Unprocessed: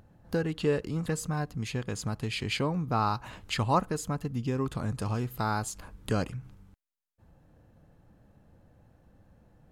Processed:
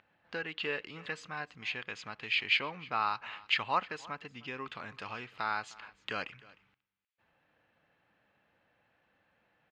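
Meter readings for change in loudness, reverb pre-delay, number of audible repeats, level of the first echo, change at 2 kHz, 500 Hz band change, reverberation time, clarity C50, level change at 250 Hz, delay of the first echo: -4.0 dB, none, 1, -21.5 dB, +5.0 dB, -10.5 dB, none, none, -16.5 dB, 0.307 s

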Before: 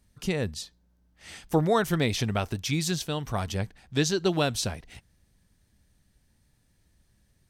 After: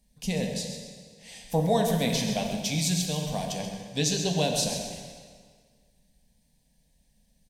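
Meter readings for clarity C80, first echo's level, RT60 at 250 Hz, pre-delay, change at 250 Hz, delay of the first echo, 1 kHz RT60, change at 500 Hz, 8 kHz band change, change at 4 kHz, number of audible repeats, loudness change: 4.0 dB, -9.5 dB, 1.8 s, 3 ms, +0.5 dB, 0.133 s, 1.8 s, -0.5 dB, +4.5 dB, +2.5 dB, 1, 0.0 dB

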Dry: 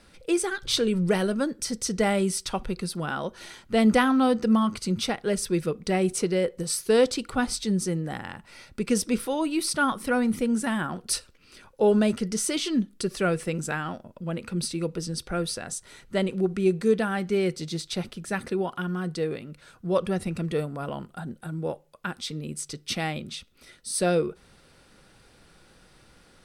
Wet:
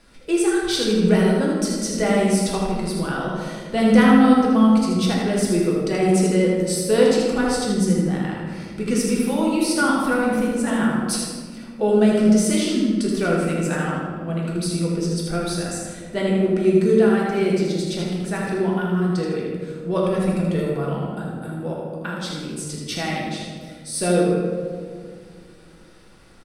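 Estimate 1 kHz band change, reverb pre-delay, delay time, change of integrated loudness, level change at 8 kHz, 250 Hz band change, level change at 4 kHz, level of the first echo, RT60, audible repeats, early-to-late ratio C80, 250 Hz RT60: +5.0 dB, 3 ms, 79 ms, +6.0 dB, +3.0 dB, +8.0 dB, +3.0 dB, -5.0 dB, 1.9 s, 1, 1.5 dB, 3.4 s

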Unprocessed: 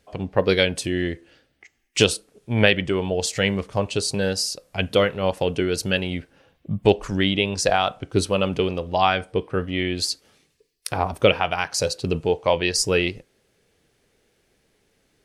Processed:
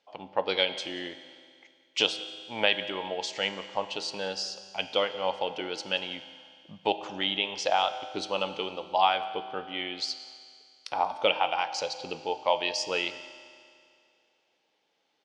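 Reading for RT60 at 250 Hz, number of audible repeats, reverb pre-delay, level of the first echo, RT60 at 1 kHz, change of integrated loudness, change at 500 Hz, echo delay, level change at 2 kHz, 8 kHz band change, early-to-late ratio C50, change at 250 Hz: 2.3 s, 1, 4 ms, -20.0 dB, 2.3 s, -7.0 dB, -9.5 dB, 0.183 s, -7.0 dB, -13.5 dB, 12.0 dB, -15.5 dB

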